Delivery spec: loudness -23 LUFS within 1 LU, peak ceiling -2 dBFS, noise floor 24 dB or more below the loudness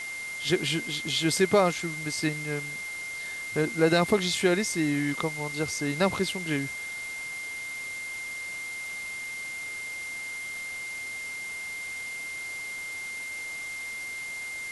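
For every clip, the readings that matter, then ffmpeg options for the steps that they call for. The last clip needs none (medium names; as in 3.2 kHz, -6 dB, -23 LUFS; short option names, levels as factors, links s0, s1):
steady tone 2.1 kHz; tone level -34 dBFS; noise floor -37 dBFS; noise floor target -54 dBFS; loudness -29.5 LUFS; peak level -9.5 dBFS; loudness target -23.0 LUFS
-> -af "bandreject=f=2100:w=30"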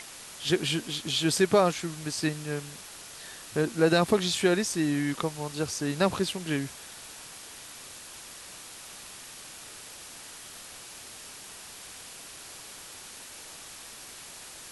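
steady tone not found; noise floor -46 dBFS; noise floor target -52 dBFS
-> -af "afftdn=nr=6:nf=-46"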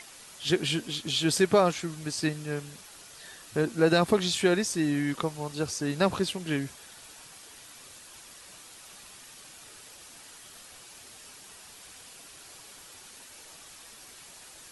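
noise floor -50 dBFS; noise floor target -52 dBFS
-> -af "afftdn=nr=6:nf=-50"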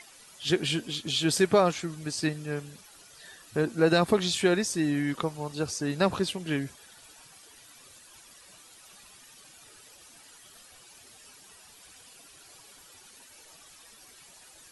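noise floor -54 dBFS; loudness -27.5 LUFS; peak level -9.5 dBFS; loudness target -23.0 LUFS
-> -af "volume=1.68"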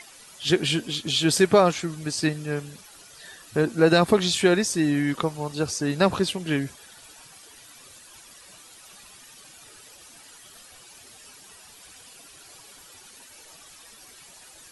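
loudness -23.0 LUFS; peak level -5.0 dBFS; noise floor -49 dBFS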